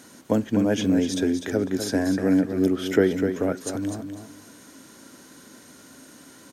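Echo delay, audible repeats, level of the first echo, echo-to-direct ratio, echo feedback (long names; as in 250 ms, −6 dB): 250 ms, 2, −8.0 dB, −8.0 dB, 21%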